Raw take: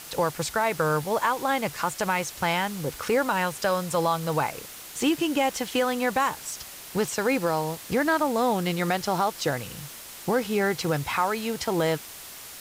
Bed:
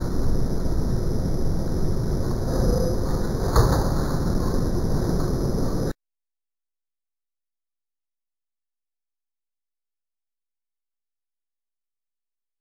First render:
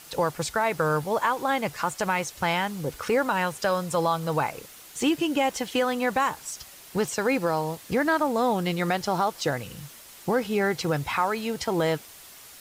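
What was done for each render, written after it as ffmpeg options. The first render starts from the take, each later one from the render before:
-af "afftdn=nr=6:nf=-42"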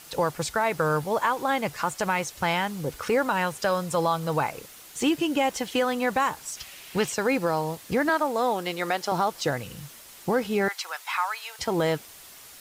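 -filter_complex "[0:a]asettb=1/sr,asplit=3[a][b][c];[a]atrim=end=6.574[d];[b]atrim=start=6.57:end=7.12,asetpts=PTS-STARTPTS,afade=t=in:d=0.004:c=qsin,afade=t=out:st=0.546:d=0.004:c=qsin,equalizer=f=2.6k:t=o:w=1.2:g=9[e];[c]atrim=start=7.116[f];[d][e]acrossfade=d=0.004:c1=hsin:c2=qsin[g];[g][f]acrossfade=d=0.004:c1=qsin:c2=hsin,asettb=1/sr,asplit=3[h][i][j];[h]atrim=end=8.094[k];[i]atrim=start=8.09:end=9.12,asetpts=PTS-STARTPTS,afade=t=in:d=0.004:c=qsin,afade=t=out:st=1.026:d=0.004:c=qsin,highpass=320[l];[j]atrim=start=9.116[m];[k][l]acrossfade=d=0.004:c1=hsin:c2=qsin[n];[n][m]acrossfade=d=0.004:c1=qsin:c2=hsin,asettb=1/sr,asplit=3[o][p][q];[o]atrim=end=10.684[r];[p]atrim=start=10.68:end=11.59,asetpts=PTS-STARTPTS,afade=t=in:d=0.004:c=qsin,afade=t=out:st=0.906:d=0.004:c=qsin,highpass=f=890:w=0.5412,highpass=f=890:w=1.3066[s];[q]atrim=start=11.586[t];[r][s]acrossfade=d=0.004:c1=hsin:c2=qsin[u];[u][t]acrossfade=d=0.004:c1=qsin:c2=hsin"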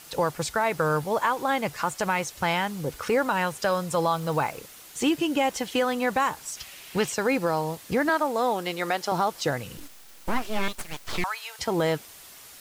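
-filter_complex "[0:a]asettb=1/sr,asplit=3[a][b][c];[a]atrim=end=4.154[d];[b]atrim=start=4.15:end=4.57,asetpts=PTS-STARTPTS,afade=t=in:d=0.004:c=qsin,afade=t=out:st=0.416:d=0.004:c=qsin,acrusher=bits=7:mix=0:aa=0.5[e];[c]atrim=start=4.566[f];[d][e]acrossfade=d=0.004:c1=hsin:c2=qsin[g];[g][f]acrossfade=d=0.004:c1=qsin:c2=hsin,asettb=1/sr,asplit=3[h][i][j];[h]atrim=end=9.774[k];[i]atrim=start=9.77:end=11.24,asetpts=PTS-STARTPTS,afade=t=in:d=0.004:c=qsin,afade=t=out:st=1.466:d=0.004:c=qsin,aeval=exprs='abs(val(0))':c=same[l];[j]atrim=start=11.236[m];[k][l]acrossfade=d=0.004:c1=hsin:c2=qsin[n];[n][m]acrossfade=d=0.004:c1=qsin:c2=hsin"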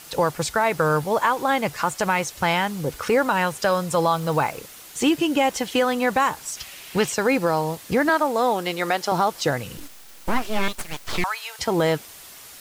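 -af "volume=4dB"

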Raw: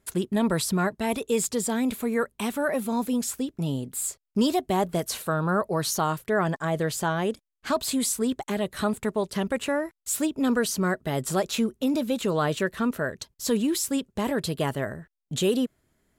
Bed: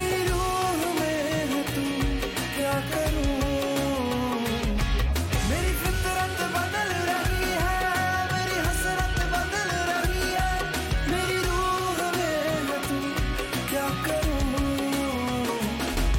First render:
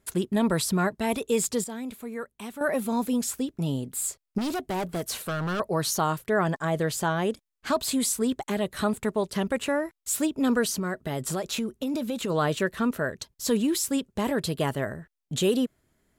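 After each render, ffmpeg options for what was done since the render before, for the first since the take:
-filter_complex "[0:a]asettb=1/sr,asplit=3[a][b][c];[a]atrim=end=4.384[d];[b]atrim=start=4.38:end=5.6,asetpts=PTS-STARTPTS,afade=t=in:d=0.004:c=qsin,afade=t=out:st=1.216:d=0.004:c=qsin,asoftclip=type=hard:threshold=-26.5dB[e];[c]atrim=start=5.596[f];[d][e]acrossfade=d=0.004:c1=hsin:c2=qsin[g];[g][f]acrossfade=d=0.004:c1=qsin:c2=hsin,asplit=3[h][i][j];[h]afade=t=out:st=10.7:d=0.02[k];[i]acompressor=threshold=-25dB:ratio=6:attack=3.2:release=140:knee=1:detection=peak,afade=t=in:st=10.7:d=0.02,afade=t=out:st=12.29:d=0.02[l];[j]afade=t=in:st=12.29:d=0.02[m];[k][l][m]amix=inputs=3:normalize=0,asplit=3[n][o][p];[n]atrim=end=1.642[q];[o]atrim=start=1.638:end=2.612,asetpts=PTS-STARTPTS,volume=-9.5dB[r];[p]atrim=start=2.608[s];[q][r]acrossfade=d=0.004:c1=hsin:c2=hsin[t];[t][s]acrossfade=d=0.004:c1=hsin:c2=hsin"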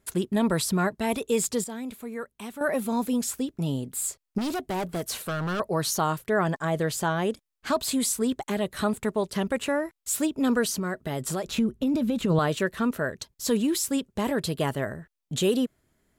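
-filter_complex "[0:a]asettb=1/sr,asplit=3[a][b][c];[a]atrim=end=11.474[d];[b]atrim=start=11.47:end=12.39,asetpts=PTS-STARTPTS,afade=t=in:d=0.004:c=qsin,afade=t=out:st=0.916:d=0.004:c=qsin,bass=f=250:g=11,treble=f=4k:g=-5[e];[c]atrim=start=12.386[f];[d][e]acrossfade=d=0.004:c1=hsin:c2=qsin[g];[g][f]acrossfade=d=0.004:c1=qsin:c2=hsin"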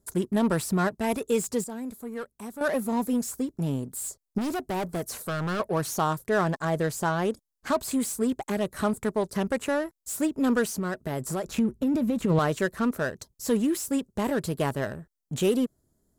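-filter_complex "[0:a]acrossover=split=4300[a][b];[a]adynamicsmooth=sensitivity=6:basefreq=850[c];[b]asoftclip=type=tanh:threshold=-29.5dB[d];[c][d]amix=inputs=2:normalize=0"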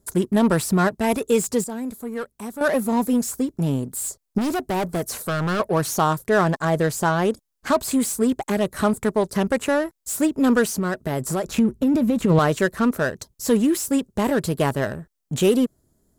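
-af "volume=6dB"

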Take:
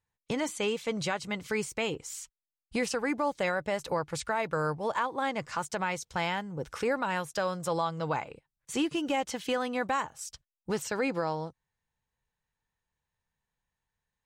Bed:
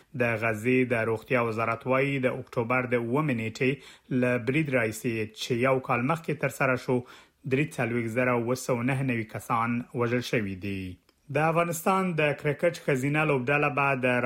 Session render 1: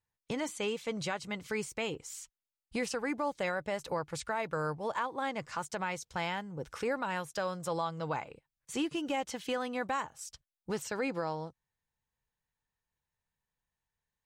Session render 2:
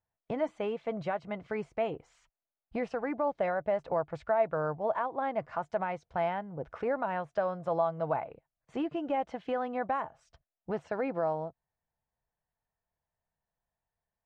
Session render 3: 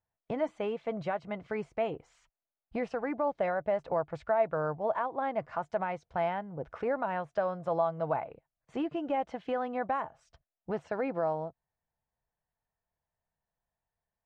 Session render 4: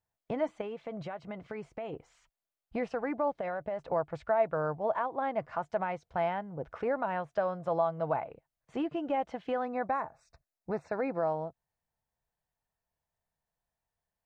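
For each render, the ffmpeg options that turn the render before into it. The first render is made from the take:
-af "volume=-4dB"
-af "lowpass=1.7k,equalizer=f=670:t=o:w=0.35:g=12.5"
-af anull
-filter_complex "[0:a]asettb=1/sr,asplit=3[a][b][c];[a]atrim=end=0.614[d];[b]atrim=start=0.61:end=1.93,asetpts=PTS-STARTPTS,afade=t=in:d=0.004:c=qsin,afade=t=out:st=1.316:d=0.004:c=qsin,acompressor=threshold=-35dB:ratio=6:attack=3.2:release=140:knee=1:detection=peak[e];[c]atrim=start=1.926[f];[d][e]acrossfade=d=0.004:c1=hsin:c2=qsin[g];[g][f]acrossfade=d=0.004:c1=qsin:c2=hsin,asettb=1/sr,asplit=3[h][i][j];[h]atrim=end=3.394[k];[i]atrim=start=3.39:end=3.88,asetpts=PTS-STARTPTS,afade=t=in:d=0.004:c=qsin,afade=t=out:st=0.486:d=0.004:c=qsin,acompressor=threshold=-31dB:ratio=6:attack=3.2:release=140:knee=1:detection=peak[l];[j]atrim=start=3.876[m];[k][l]acrossfade=d=0.004:c1=hsin:c2=qsin[n];[n][m]acrossfade=d=0.004:c1=qsin:c2=hsin,asettb=1/sr,asplit=3[o][p][q];[o]atrim=end=9.654[r];[p]atrim=start=9.65:end=11.23,asetpts=PTS-STARTPTS,afade=t=in:d=0.004:c=qsin,afade=t=out:st=1.576:d=0.004:c=qsin,asuperstop=centerf=3100:order=12:qfactor=3.5[s];[q]atrim=start=11.226[t];[r][s]acrossfade=d=0.004:c1=hsin:c2=qsin[u];[u][t]acrossfade=d=0.004:c1=qsin:c2=hsin"

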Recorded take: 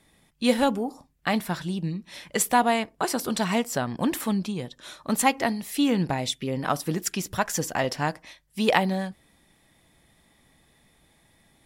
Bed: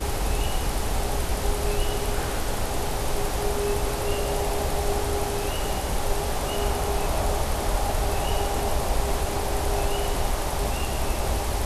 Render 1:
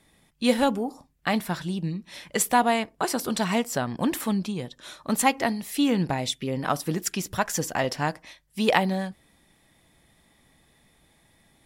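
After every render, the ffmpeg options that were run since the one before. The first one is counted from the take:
-af anull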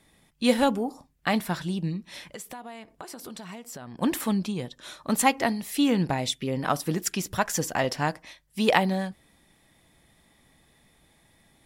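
-filter_complex "[0:a]asplit=3[a][b][c];[a]afade=t=out:st=2.24:d=0.02[d];[b]acompressor=threshold=-37dB:ratio=8:attack=3.2:release=140:knee=1:detection=peak,afade=t=in:st=2.24:d=0.02,afade=t=out:st=4.01:d=0.02[e];[c]afade=t=in:st=4.01:d=0.02[f];[d][e][f]amix=inputs=3:normalize=0"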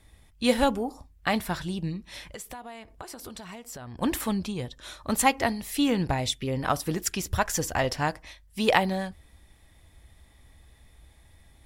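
-af "lowshelf=f=110:t=q:w=1.5:g=13"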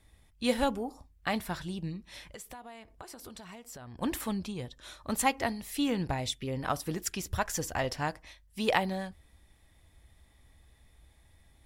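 -af "volume=-5.5dB"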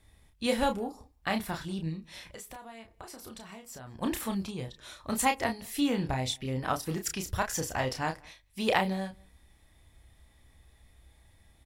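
-filter_complex "[0:a]asplit=2[a][b];[b]adelay=31,volume=-5.5dB[c];[a][c]amix=inputs=2:normalize=0,asplit=2[d][e];[e]adelay=192.4,volume=-28dB,highshelf=f=4k:g=-4.33[f];[d][f]amix=inputs=2:normalize=0"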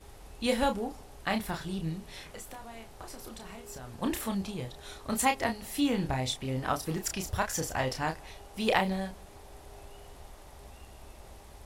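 -filter_complex "[1:a]volume=-24.5dB[a];[0:a][a]amix=inputs=2:normalize=0"

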